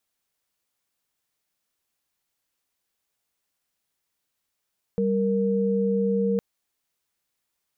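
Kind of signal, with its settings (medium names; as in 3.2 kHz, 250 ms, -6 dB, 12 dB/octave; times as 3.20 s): chord G3/A#4 sine, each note -23 dBFS 1.41 s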